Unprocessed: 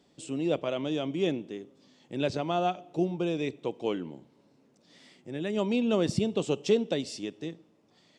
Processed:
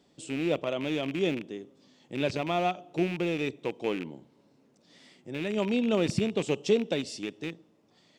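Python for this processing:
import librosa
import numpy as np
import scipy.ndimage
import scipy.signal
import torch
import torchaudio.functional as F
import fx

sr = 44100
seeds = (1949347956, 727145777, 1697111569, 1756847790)

y = fx.rattle_buzz(x, sr, strikes_db=-38.0, level_db=-28.0)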